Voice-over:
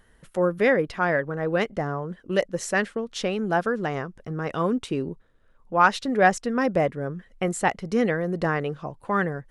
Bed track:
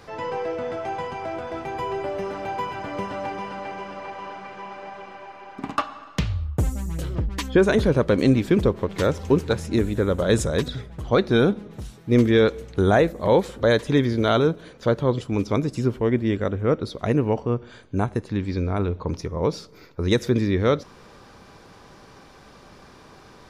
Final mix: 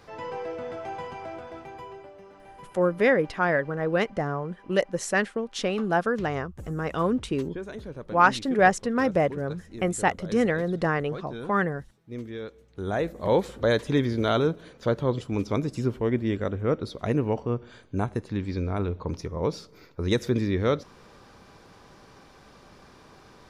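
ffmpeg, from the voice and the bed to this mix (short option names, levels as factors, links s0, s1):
-filter_complex "[0:a]adelay=2400,volume=0.944[s0];[1:a]volume=2.99,afade=t=out:st=1.14:d=0.99:silence=0.211349,afade=t=in:st=12.7:d=0.65:silence=0.16788[s1];[s0][s1]amix=inputs=2:normalize=0"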